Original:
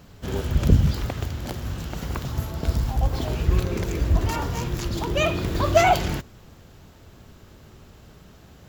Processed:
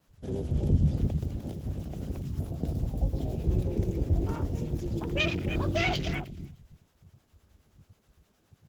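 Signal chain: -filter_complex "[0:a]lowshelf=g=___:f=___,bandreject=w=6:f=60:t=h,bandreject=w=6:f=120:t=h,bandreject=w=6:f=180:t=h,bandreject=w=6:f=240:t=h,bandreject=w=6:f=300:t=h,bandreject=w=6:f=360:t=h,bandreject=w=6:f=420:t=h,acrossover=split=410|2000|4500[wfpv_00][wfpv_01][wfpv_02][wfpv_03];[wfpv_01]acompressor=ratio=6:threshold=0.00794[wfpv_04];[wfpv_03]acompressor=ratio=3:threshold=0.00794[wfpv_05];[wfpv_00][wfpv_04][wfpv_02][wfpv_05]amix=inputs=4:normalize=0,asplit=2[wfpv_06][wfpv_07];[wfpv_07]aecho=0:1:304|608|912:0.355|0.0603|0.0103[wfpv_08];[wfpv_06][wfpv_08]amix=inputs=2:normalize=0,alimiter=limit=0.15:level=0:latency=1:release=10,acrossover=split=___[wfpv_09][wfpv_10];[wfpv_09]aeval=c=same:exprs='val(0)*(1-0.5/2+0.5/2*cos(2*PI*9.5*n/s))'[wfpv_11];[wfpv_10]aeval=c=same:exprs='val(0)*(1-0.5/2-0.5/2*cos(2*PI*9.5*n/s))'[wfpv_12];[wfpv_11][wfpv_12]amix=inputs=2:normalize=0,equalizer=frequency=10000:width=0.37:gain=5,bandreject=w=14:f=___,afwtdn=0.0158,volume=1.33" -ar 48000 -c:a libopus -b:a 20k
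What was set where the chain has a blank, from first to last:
-7.5, 98, 640, 4300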